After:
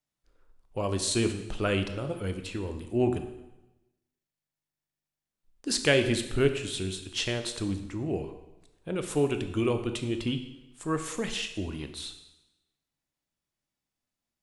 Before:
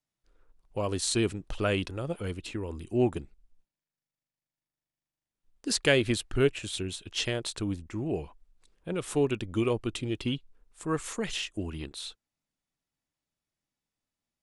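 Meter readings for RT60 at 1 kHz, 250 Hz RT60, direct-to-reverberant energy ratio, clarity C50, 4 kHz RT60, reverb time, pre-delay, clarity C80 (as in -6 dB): 1.0 s, 0.95 s, 7.0 dB, 9.5 dB, 0.95 s, 1.0 s, 7 ms, 11.5 dB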